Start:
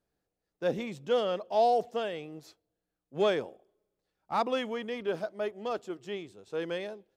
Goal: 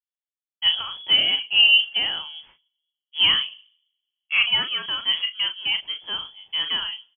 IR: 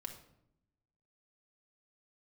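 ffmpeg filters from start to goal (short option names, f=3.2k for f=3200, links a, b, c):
-filter_complex "[0:a]agate=range=-33dB:threshold=-51dB:ratio=3:detection=peak,equalizer=f=240:t=o:w=0.46:g=-12.5,asplit=2[a][b];[b]adelay=37,volume=-8dB[c];[a][c]amix=inputs=2:normalize=0,asplit=2[d][e];[1:a]atrim=start_sample=2205[f];[e][f]afir=irnorm=-1:irlink=0,volume=-16.5dB[g];[d][g]amix=inputs=2:normalize=0,lowpass=f=3k:t=q:w=0.5098,lowpass=f=3k:t=q:w=0.6013,lowpass=f=3k:t=q:w=0.9,lowpass=f=3k:t=q:w=2.563,afreqshift=-3500,volume=8dB"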